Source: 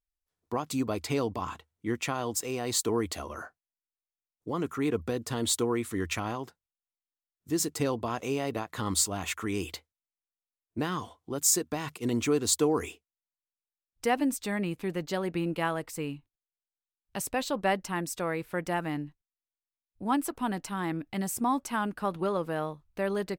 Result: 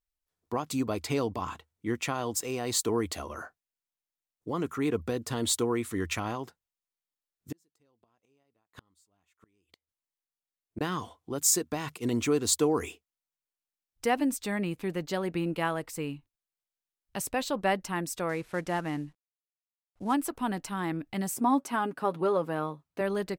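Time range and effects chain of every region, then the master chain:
0:07.52–0:10.81: shaped tremolo saw up 1.1 Hz, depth 30% + gate with flip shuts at −27 dBFS, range −40 dB
0:18.29–0:20.14: variable-slope delta modulation 64 kbit/s + high-shelf EQ 7,000 Hz −6.5 dB
0:21.34–0:23.01: high-pass filter 190 Hz + tilt shelving filter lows +3 dB, about 1,300 Hz + comb filter 7.3 ms, depth 43%
whole clip: no processing

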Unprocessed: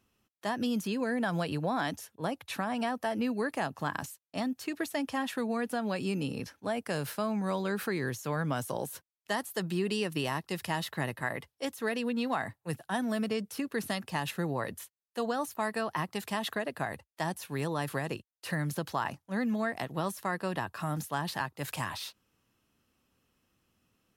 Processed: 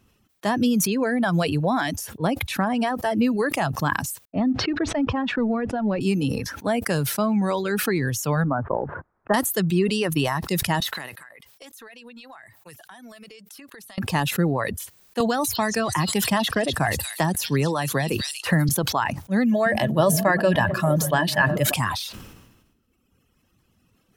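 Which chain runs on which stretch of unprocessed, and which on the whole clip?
0:04.25–0:06.01: mu-law and A-law mismatch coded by mu + head-to-tape spacing loss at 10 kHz 44 dB
0:08.44–0:09.34: transient designer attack +6 dB, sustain −2 dB + Butterworth low-pass 1,500 Hz + low-shelf EQ 470 Hz −4 dB
0:10.80–0:13.98: high-pass filter 1,300 Hz 6 dB per octave + downward compressor 10 to 1, threshold −49 dBFS
0:15.20–0:18.69: echo through a band-pass that steps 240 ms, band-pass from 4,400 Hz, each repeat 0.7 octaves, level 0 dB + multiband upward and downward compressor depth 70%
0:19.51–0:21.74: hollow resonant body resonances 600/1,700/3,000 Hz, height 13 dB + echo through a band-pass that steps 147 ms, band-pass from 160 Hz, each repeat 0.7 octaves, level −4 dB
whole clip: reverb reduction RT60 1.5 s; low-shelf EQ 240 Hz +7.5 dB; level that may fall only so fast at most 48 dB per second; level +8 dB

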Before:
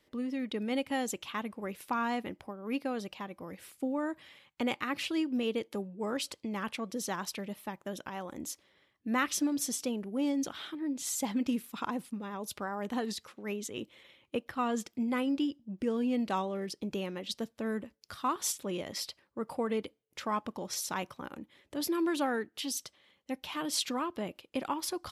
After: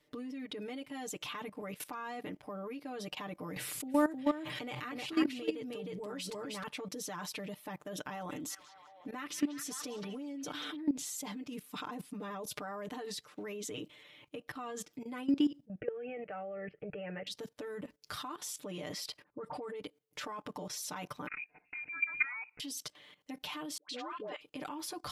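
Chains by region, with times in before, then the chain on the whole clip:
0:03.56–0:06.63: parametric band 130 Hz +9.5 dB 0.25 octaves + single-tap delay 310 ms −3.5 dB + envelope flattener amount 70%
0:08.12–0:10.76: downward compressor 2 to 1, threshold −35 dBFS + echo through a band-pass that steps 187 ms, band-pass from 3,000 Hz, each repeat −0.7 octaves, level −4 dB
0:15.65–0:17.27: Butterworth low-pass 3,000 Hz 48 dB per octave + phaser with its sweep stopped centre 1,000 Hz, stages 6
0:19.23–0:19.80: low-pass that shuts in the quiet parts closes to 1,300 Hz, open at −28.5 dBFS + all-pass dispersion highs, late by 43 ms, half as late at 2,000 Hz
0:21.27–0:22.60: parametric band 1,800 Hz −6 dB 0.34 octaves + voice inversion scrambler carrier 2,700 Hz + notch comb filter 580 Hz
0:23.77–0:24.41: band-pass filter 350–4,000 Hz + all-pass dispersion highs, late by 124 ms, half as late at 800 Hz
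whole clip: downward compressor 2.5 to 1, threshold −39 dBFS; comb filter 6.7 ms, depth 96%; output level in coarse steps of 16 dB; level +6.5 dB

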